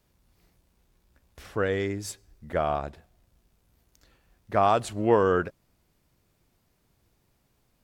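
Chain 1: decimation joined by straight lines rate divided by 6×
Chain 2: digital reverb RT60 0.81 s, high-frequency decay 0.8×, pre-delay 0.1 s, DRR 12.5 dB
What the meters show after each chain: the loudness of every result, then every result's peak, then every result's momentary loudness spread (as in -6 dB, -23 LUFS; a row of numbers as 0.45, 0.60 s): -27.0, -26.5 LUFS; -9.0, -9.0 dBFS; 15, 17 LU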